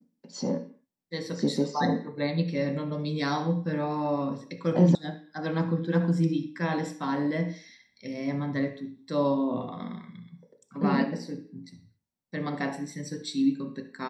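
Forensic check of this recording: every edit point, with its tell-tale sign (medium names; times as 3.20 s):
4.95 s: sound stops dead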